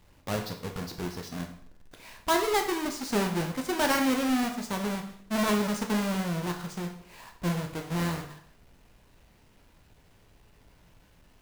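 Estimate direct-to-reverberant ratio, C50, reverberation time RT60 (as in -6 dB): 3.0 dB, 8.5 dB, 0.60 s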